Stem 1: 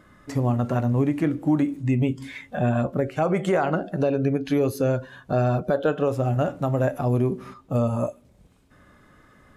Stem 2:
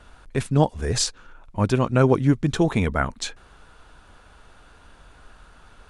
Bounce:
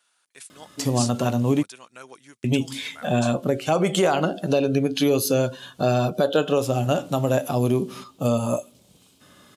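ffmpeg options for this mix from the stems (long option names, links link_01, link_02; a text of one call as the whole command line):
ffmpeg -i stem1.wav -i stem2.wav -filter_complex "[0:a]firequalizer=gain_entry='entry(1100,0);entry(1900,-3);entry(3000,12)':delay=0.05:min_phase=1,adelay=500,volume=2dB,asplit=3[link_01][link_02][link_03];[link_01]atrim=end=1.63,asetpts=PTS-STARTPTS,afade=type=out:start_time=1.626:duration=0.004:curve=hsin[link_04];[link_02]atrim=start=1.63:end=2.44,asetpts=PTS-STARTPTS,volume=0[link_05];[link_03]atrim=start=2.44,asetpts=PTS-STARTPTS,afade=type=in:duration=0.004:curve=hsin[link_06];[link_04][link_05][link_06]concat=n=3:v=0:a=1[link_07];[1:a]aderivative,volume=-3.5dB[link_08];[link_07][link_08]amix=inputs=2:normalize=0,highpass=130" out.wav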